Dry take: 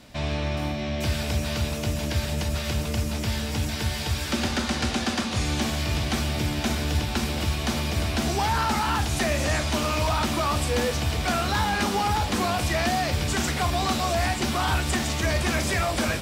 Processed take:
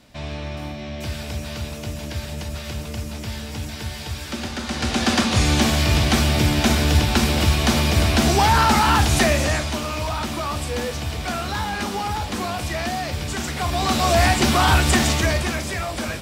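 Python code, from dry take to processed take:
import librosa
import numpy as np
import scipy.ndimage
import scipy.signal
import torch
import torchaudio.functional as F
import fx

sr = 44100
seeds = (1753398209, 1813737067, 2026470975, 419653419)

y = fx.gain(x, sr, db=fx.line((4.58, -3.0), (5.13, 8.0), (9.2, 8.0), (9.82, -1.5), (13.49, -1.5), (14.17, 8.0), (15.08, 8.0), (15.63, -2.0)))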